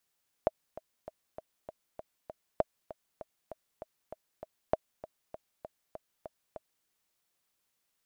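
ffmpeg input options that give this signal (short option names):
-f lavfi -i "aevalsrc='pow(10,(-12-17*gte(mod(t,7*60/197),60/197))/20)*sin(2*PI*633*mod(t,60/197))*exp(-6.91*mod(t,60/197)/0.03)':d=6.39:s=44100"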